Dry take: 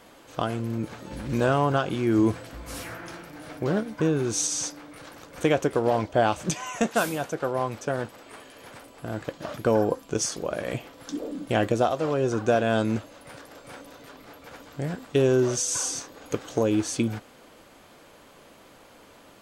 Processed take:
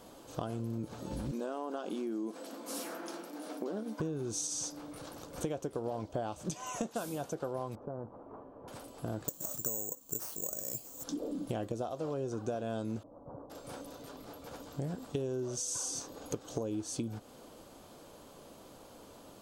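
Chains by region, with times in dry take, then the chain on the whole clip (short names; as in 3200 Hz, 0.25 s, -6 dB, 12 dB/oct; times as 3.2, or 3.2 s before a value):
1.31–4 compressor 2:1, threshold -30 dBFS + brick-wall FIR high-pass 190 Hz
7.75–8.68 Chebyshev low-pass 1100 Hz, order 3 + compressor 2.5:1, threshold -40 dBFS
9.28–11.04 air absorption 69 m + careless resampling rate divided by 6×, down none, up zero stuff
13.03–13.5 expander -47 dBFS + steep low-pass 1100 Hz
whole clip: bell 2000 Hz -12 dB 1.2 oct; compressor 6:1, threshold -34 dBFS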